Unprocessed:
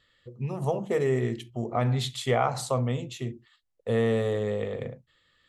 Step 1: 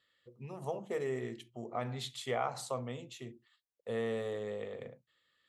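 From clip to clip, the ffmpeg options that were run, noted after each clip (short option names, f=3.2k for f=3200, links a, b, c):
-af "highpass=f=280:p=1,volume=-8.5dB"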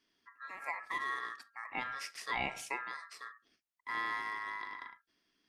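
-af "aeval=exprs='val(0)*sin(2*PI*1500*n/s)':c=same,volume=1dB"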